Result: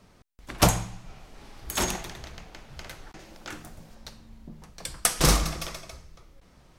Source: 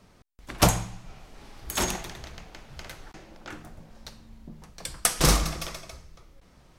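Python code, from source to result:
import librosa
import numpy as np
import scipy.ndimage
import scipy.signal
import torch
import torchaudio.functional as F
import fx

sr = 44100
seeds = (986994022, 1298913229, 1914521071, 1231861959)

y = fx.high_shelf(x, sr, hz=3600.0, db=9.0, at=(3.19, 3.95))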